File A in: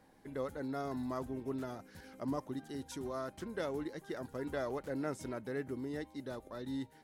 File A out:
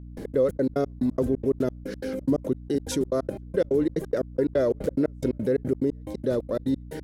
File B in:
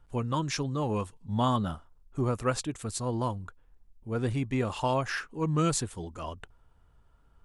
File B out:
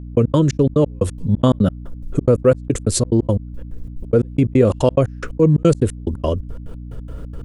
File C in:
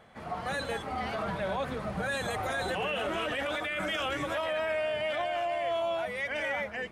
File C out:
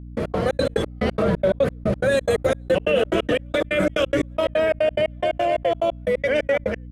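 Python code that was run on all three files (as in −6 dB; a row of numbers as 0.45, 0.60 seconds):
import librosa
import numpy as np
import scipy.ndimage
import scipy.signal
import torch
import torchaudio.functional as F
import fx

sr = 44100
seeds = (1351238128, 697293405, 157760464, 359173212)

y = fx.low_shelf_res(x, sr, hz=650.0, db=7.0, q=3.0)
y = fx.step_gate(y, sr, bpm=178, pattern='..x.xx.x.x', floor_db=-60.0, edge_ms=4.5)
y = fx.add_hum(y, sr, base_hz=60, snr_db=34)
y = fx.env_flatten(y, sr, amount_pct=50)
y = F.gain(torch.from_numpy(y), 4.5).numpy()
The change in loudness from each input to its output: +14.0, +13.0, +10.0 LU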